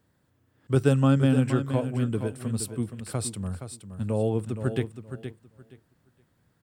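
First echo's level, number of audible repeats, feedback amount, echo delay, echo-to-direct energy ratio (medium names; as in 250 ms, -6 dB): -9.5 dB, 2, 20%, 470 ms, -9.5 dB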